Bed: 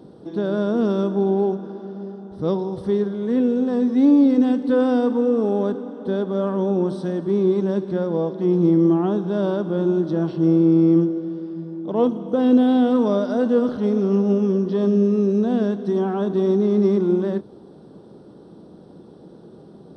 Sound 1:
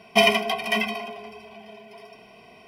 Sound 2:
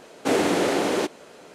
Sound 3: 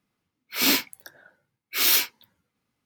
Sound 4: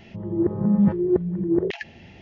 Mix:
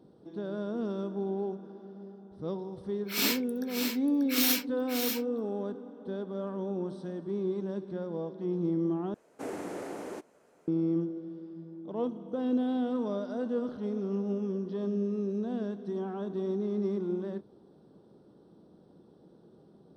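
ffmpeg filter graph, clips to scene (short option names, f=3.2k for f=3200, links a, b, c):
-filter_complex "[0:a]volume=-13.5dB[a];[3:a]aecho=1:1:588:0.473[b];[2:a]equalizer=f=3.6k:t=o:w=1.3:g=-11[c];[a]asplit=2[d][e];[d]atrim=end=9.144[f];[c]atrim=end=1.54,asetpts=PTS-STARTPTS,volume=-16dB[g];[e]atrim=start=10.676[h];[b]atrim=end=2.85,asetpts=PTS-STARTPTS,volume=-7.5dB,afade=t=in:d=0.004:c=hsin,afade=t=out:st=2.846:d=0.004:c=hsin,adelay=2560[i];[f][g]acrossfade=d=0.004:c1=hsin:c2=hsin[j];[j][h]acrossfade=d=0.004:c1=hsin:c2=hsin[k];[k][i]amix=inputs=2:normalize=0"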